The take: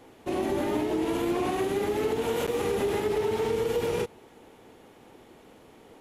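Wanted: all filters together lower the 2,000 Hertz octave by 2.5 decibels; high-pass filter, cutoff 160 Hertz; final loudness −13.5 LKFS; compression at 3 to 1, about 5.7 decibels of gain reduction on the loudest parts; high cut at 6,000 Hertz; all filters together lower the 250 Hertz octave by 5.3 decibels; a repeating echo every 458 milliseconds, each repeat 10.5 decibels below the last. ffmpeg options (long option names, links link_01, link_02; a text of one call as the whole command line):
ffmpeg -i in.wav -af "highpass=160,lowpass=6000,equalizer=frequency=250:width_type=o:gain=-7.5,equalizer=frequency=2000:width_type=o:gain=-3,acompressor=threshold=-34dB:ratio=3,aecho=1:1:458|916|1374:0.299|0.0896|0.0269,volume=22.5dB" out.wav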